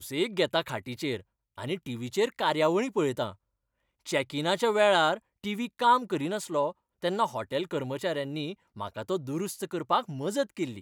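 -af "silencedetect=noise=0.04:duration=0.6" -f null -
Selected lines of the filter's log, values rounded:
silence_start: 3.28
silence_end: 4.09 | silence_duration: 0.81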